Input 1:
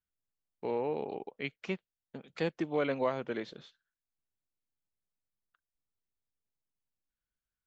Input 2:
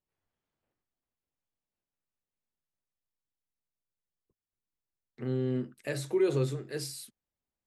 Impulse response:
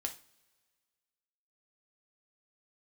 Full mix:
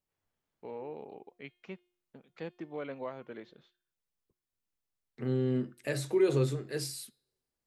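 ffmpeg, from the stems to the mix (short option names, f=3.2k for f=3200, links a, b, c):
-filter_complex "[0:a]highshelf=f=5.5k:g=-12,volume=-8.5dB[a];[1:a]volume=0dB,asplit=2[b][c];[c]volume=-18dB[d];[2:a]atrim=start_sample=2205[e];[d][e]afir=irnorm=-1:irlink=0[f];[a][b][f]amix=inputs=3:normalize=0,bandreject=f=356.7:t=h:w=4,bandreject=f=713.4:t=h:w=4,bandreject=f=1.0701k:t=h:w=4,bandreject=f=1.4268k:t=h:w=4,bandreject=f=1.7835k:t=h:w=4,bandreject=f=2.1402k:t=h:w=4,bandreject=f=2.4969k:t=h:w=4,bandreject=f=2.8536k:t=h:w=4,bandreject=f=3.2103k:t=h:w=4,bandreject=f=3.567k:t=h:w=4,bandreject=f=3.9237k:t=h:w=4,bandreject=f=4.2804k:t=h:w=4,bandreject=f=4.6371k:t=h:w=4,bandreject=f=4.9938k:t=h:w=4"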